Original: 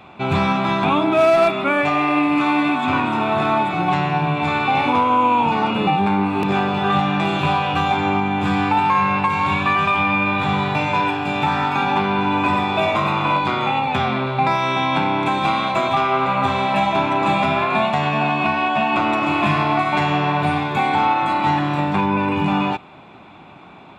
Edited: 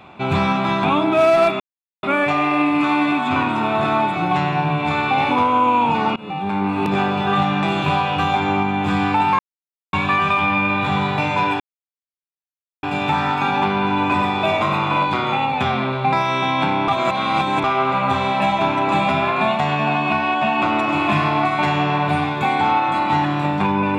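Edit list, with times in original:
1.60 s: insert silence 0.43 s
5.73–6.33 s: fade in, from -22 dB
8.96–9.50 s: mute
11.17 s: insert silence 1.23 s
15.22–15.98 s: reverse

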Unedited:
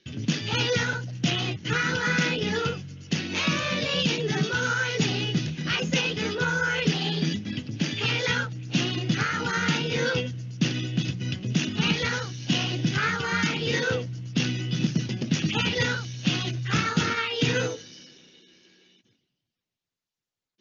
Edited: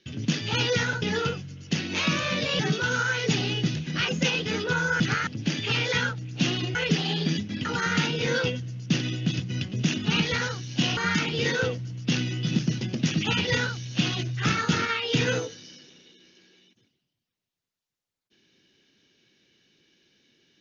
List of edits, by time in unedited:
1.02–2.42 s: delete
3.99–4.30 s: delete
6.71–7.61 s: swap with 9.09–9.36 s
12.68–13.25 s: delete

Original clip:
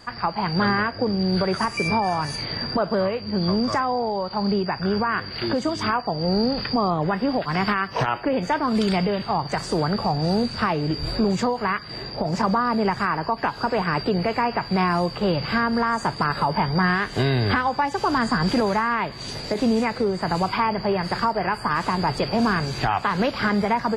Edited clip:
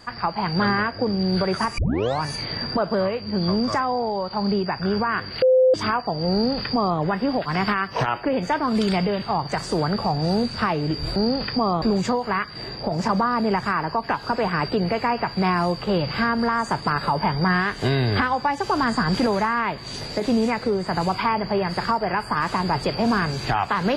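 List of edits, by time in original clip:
1.78 s: tape start 0.43 s
5.42–5.74 s: bleep 515 Hz -12 dBFS
6.33–6.99 s: copy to 11.16 s

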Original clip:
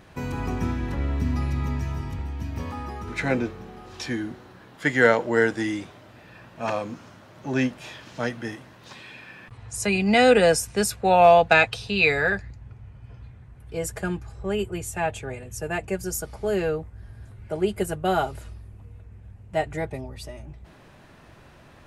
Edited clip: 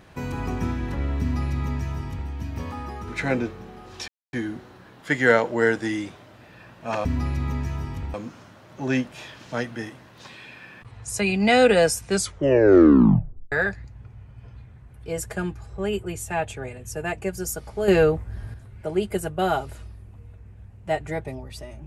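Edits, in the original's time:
1.21–2.30 s: copy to 6.80 s
4.08 s: insert silence 0.25 s
10.74 s: tape stop 1.44 s
16.54–17.20 s: gain +8 dB

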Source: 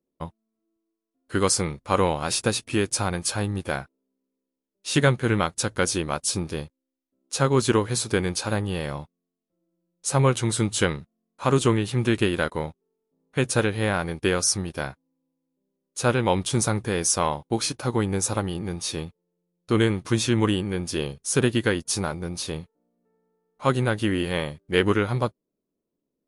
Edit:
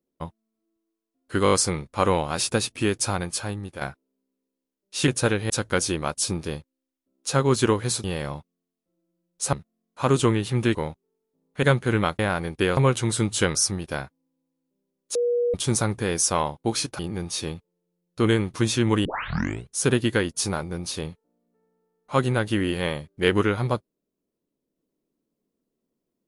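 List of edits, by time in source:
1.44 s: stutter 0.02 s, 5 plays
3.00–3.73 s: fade out, to -9.5 dB
5.00–5.56 s: swap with 13.41–13.83 s
8.10–8.68 s: delete
10.17–10.95 s: move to 14.41 s
12.17–12.53 s: delete
16.01–16.40 s: bleep 481 Hz -19.5 dBFS
17.85–18.50 s: delete
20.56 s: tape start 0.65 s

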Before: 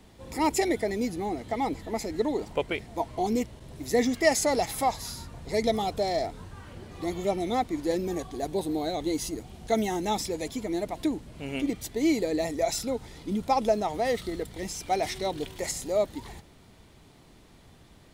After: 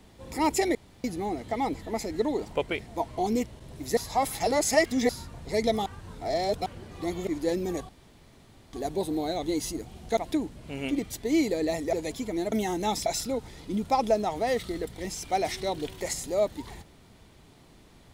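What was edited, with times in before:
0.75–1.04 s: room tone
3.97–5.09 s: reverse
5.86–6.66 s: reverse
7.27–7.69 s: delete
8.31 s: insert room tone 0.84 s
9.75–10.29 s: swap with 10.88–12.64 s

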